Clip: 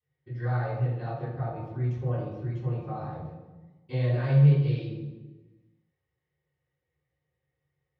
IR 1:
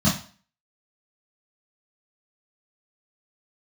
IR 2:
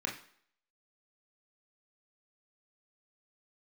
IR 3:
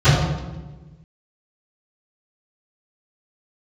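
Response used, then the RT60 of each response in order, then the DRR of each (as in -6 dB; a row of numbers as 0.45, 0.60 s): 3; 0.45 s, not exponential, 1.2 s; -9.5, -1.0, -25.0 dB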